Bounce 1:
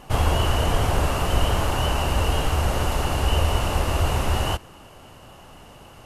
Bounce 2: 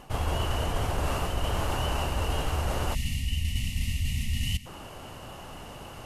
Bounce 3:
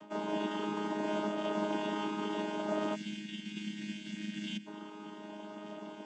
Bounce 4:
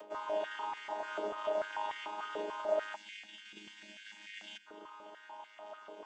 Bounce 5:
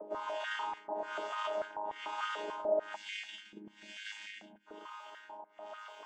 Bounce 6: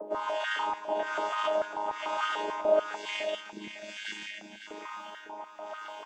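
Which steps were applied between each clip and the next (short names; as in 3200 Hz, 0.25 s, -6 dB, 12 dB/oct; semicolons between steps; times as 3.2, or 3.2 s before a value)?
spectral gain 2.94–4.66, 270–1800 Hz -30 dB; reverse; compressor 6:1, threshold -28 dBFS, peak gain reduction 13.5 dB; reverse; gain +3 dB
chord vocoder bare fifth, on G#3; gain -2 dB
upward compressor, threshold -44 dBFS; stepped high-pass 6.8 Hz 480–2000 Hz; gain -6 dB
in parallel at +2.5 dB: limiter -31.5 dBFS, peak gain reduction 10 dB; on the sum: harmonic tremolo 1.1 Hz, depth 100%, crossover 830 Hz
feedback echo 0.553 s, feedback 20%, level -9.5 dB; gain +6.5 dB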